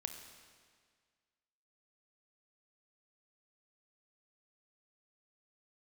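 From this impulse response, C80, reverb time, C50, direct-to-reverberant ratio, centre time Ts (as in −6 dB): 8.0 dB, 1.8 s, 6.5 dB, 5.5 dB, 34 ms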